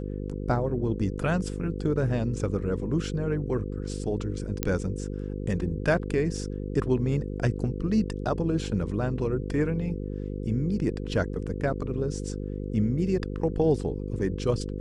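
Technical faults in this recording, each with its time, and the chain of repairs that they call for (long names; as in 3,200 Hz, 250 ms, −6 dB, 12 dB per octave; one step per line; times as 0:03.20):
mains buzz 50 Hz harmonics 10 −33 dBFS
0:04.63: click −9 dBFS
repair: click removal
hum removal 50 Hz, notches 10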